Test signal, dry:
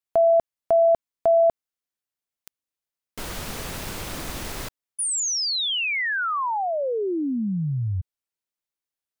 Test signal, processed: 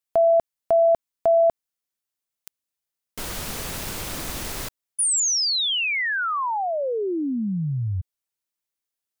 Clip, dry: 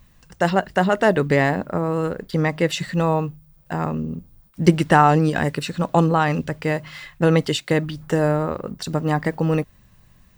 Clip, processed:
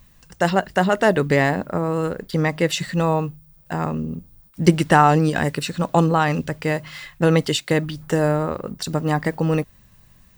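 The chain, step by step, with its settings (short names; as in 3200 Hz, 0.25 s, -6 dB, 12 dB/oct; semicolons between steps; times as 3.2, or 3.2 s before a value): high shelf 4600 Hz +5 dB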